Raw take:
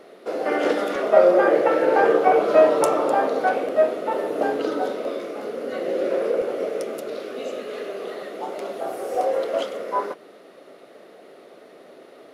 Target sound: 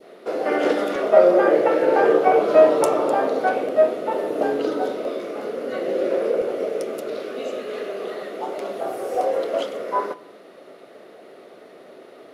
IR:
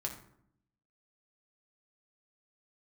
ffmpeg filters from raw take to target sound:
-filter_complex "[0:a]adynamicequalizer=threshold=0.0224:dfrequency=1400:dqfactor=0.71:tfrequency=1400:tqfactor=0.71:attack=5:release=100:ratio=0.375:range=1.5:mode=cutabove:tftype=bell,asplit=2[a][b];[1:a]atrim=start_sample=2205,lowpass=5.2k[c];[b][c]afir=irnorm=-1:irlink=0,volume=-11.5dB[d];[a][d]amix=inputs=2:normalize=0"

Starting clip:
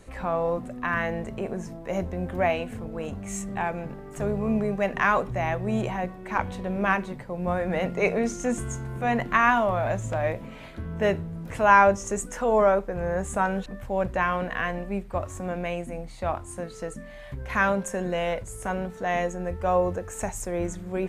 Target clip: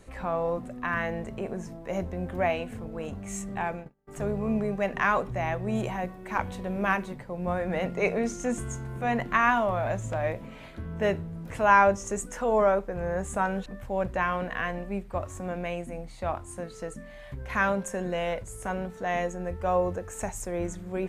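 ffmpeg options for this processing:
-filter_complex "[0:a]asplit=3[a][b][c];[a]afade=t=out:st=3.61:d=0.02[d];[b]agate=range=-33dB:threshold=-31dB:ratio=16:detection=peak,afade=t=in:st=3.61:d=0.02,afade=t=out:st=4.07:d=0.02[e];[c]afade=t=in:st=4.07:d=0.02[f];[d][e][f]amix=inputs=3:normalize=0,asettb=1/sr,asplit=3[g][h][i];[g]atrim=end=5.754[j];[h]atrim=start=5.75:end=7.14,asetpts=PTS-STARTPTS,afade=t=in:d=0.004:c=qsin,afade=t=out:st=1.386:d=0.004:c=qsin,highshelf=f=9.1k:g=8[k];[i]atrim=start=7.136[l];[j][k]acrossfade=d=0.004:c1=hsin:c2=qsin[m];[m][l]acrossfade=d=0.004:c1=qsin:c2=hsin,volume=-2.5dB"

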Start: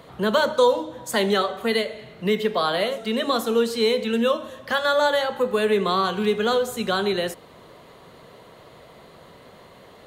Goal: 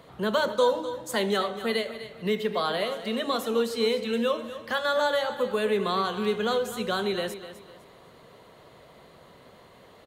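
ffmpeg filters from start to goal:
-af "aecho=1:1:252|504|756:0.237|0.0735|0.0228,volume=-5dB"

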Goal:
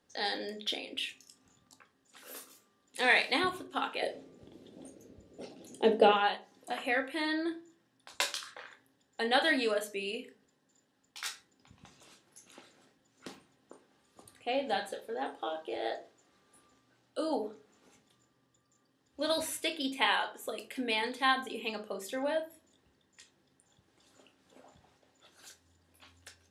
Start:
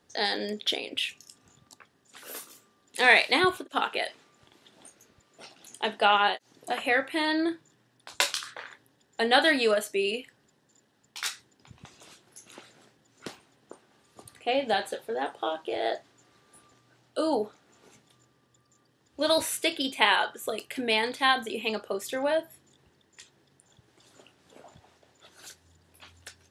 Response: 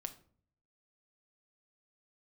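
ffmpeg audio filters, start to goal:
-filter_complex "[0:a]asettb=1/sr,asplit=3[a][b][c];[a]atrim=end=4.024[d];[b]atrim=start=4.02:end=6.09,asetpts=PTS-STARTPTS,afade=t=in:d=0.004:c=qsin,afade=t=out:st=2.066:d=0.004:c=qsin,lowshelf=f=710:t=q:w=1.5:g=13.5[e];[c]atrim=start=6.086[f];[d][e]acrossfade=d=0.004:c1=hsin:c2=qsin[g];[g][f]acrossfade=d=0.004:c1=qsin:c2=hsin[h];[1:a]atrim=start_sample=2205,asetrate=66150,aresample=44100[i];[h][i]afir=irnorm=-1:irlink=0"

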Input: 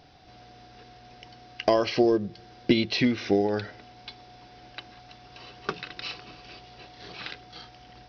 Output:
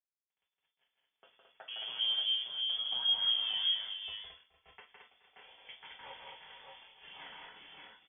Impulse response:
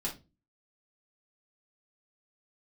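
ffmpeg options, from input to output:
-filter_complex "[0:a]highpass=f=97:p=1,agate=range=-33dB:threshold=-45dB:ratio=3:detection=peak,acrossover=split=280[a][b];[b]acompressor=threshold=-36dB:ratio=4[c];[a][c]amix=inputs=2:normalize=0,alimiter=level_in=1dB:limit=-24dB:level=0:latency=1:release=169,volume=-1dB,flanger=delay=1.2:depth=8.3:regen=-17:speed=0.27:shape=triangular,aeval=exprs='sgn(val(0))*max(abs(val(0))-0.00237,0)':c=same,aecho=1:1:161|219|424|459|578|603:0.631|0.631|0.119|0.178|0.422|0.473[d];[1:a]atrim=start_sample=2205[e];[d][e]afir=irnorm=-1:irlink=0,lowpass=f=3k:t=q:w=0.5098,lowpass=f=3k:t=q:w=0.6013,lowpass=f=3k:t=q:w=0.9,lowpass=f=3k:t=q:w=2.563,afreqshift=-3500,volume=-4dB"

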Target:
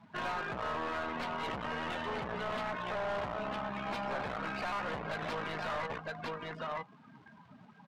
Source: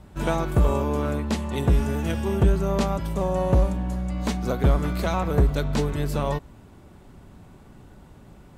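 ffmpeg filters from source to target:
-filter_complex "[0:a]acrusher=bits=3:mode=log:mix=0:aa=0.000001,aecho=1:1:1042:0.316,aeval=exprs='(tanh(14.1*val(0)+0.75)-tanh(0.75))/14.1':c=same,alimiter=limit=-22dB:level=0:latency=1:release=257,equalizer=f=330:w=0.58:g=-13.5,asetrate=48000,aresample=44100,highpass=220,lowpass=4.6k,acompressor=threshold=-55dB:ratio=1.5,afftdn=nr=22:nf=-55,asplit=2[a][b];[b]highpass=f=720:p=1,volume=28dB,asoftclip=type=tanh:threshold=-28.5dB[c];[a][c]amix=inputs=2:normalize=0,lowpass=f=1.6k:p=1,volume=-6dB,volume=2.5dB"

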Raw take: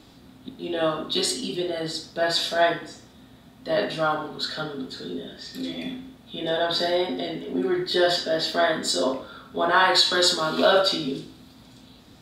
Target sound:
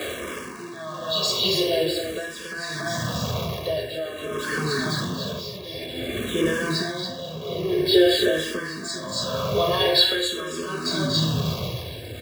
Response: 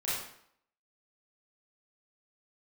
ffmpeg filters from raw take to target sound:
-filter_complex "[0:a]aeval=exprs='val(0)+0.5*0.0447*sgn(val(0))':c=same,acrossover=split=170|3000[a][b][c];[b]acompressor=threshold=-27dB:ratio=6[d];[a][d][c]amix=inputs=3:normalize=0,asubboost=boost=6.5:cutoff=240,asplit=2[e][f];[f]adynamicsmooth=sensitivity=5.5:basefreq=3.6k,volume=-6dB[g];[e][g]amix=inputs=2:normalize=0,highpass=f=86:w=0.5412,highpass=f=86:w=1.3066,aecho=1:1:1.8:0.82,asplit=2[h][i];[i]aecho=0:1:236.2|279.9:0.282|0.631[j];[h][j]amix=inputs=2:normalize=0,tremolo=f=0.62:d=0.72,firequalizer=gain_entry='entry(190,0);entry(310,11);entry(4100,6)':delay=0.05:min_phase=1,asplit=2[k][l];[l]afreqshift=-0.49[m];[k][m]amix=inputs=2:normalize=1,volume=-6dB"

